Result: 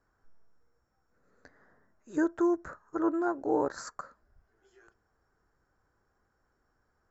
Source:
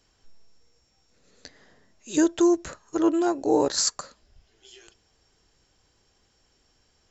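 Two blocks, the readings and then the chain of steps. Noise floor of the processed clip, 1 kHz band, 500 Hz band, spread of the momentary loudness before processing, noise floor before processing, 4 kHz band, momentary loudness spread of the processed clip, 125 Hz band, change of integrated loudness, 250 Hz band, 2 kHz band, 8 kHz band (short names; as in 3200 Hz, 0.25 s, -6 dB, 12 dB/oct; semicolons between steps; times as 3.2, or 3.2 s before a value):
-76 dBFS, -4.5 dB, -7.0 dB, 8 LU, -67 dBFS, -24.0 dB, 15 LU, -7.5 dB, -7.5 dB, -7.0 dB, -2.5 dB, n/a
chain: resonant high shelf 2100 Hz -13 dB, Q 3; gain -7.5 dB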